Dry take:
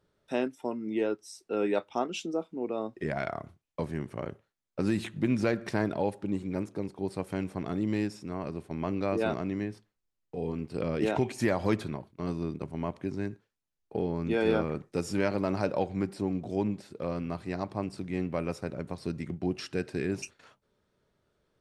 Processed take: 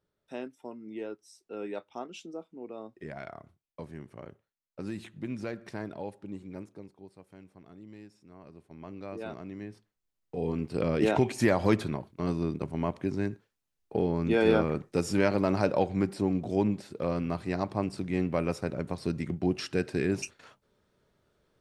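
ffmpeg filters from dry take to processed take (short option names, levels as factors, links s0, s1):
-af "volume=4.47,afade=t=out:st=6.59:d=0.53:silence=0.316228,afade=t=in:st=8.09:d=1.5:silence=0.298538,afade=t=in:st=9.59:d=0.98:silence=0.266073"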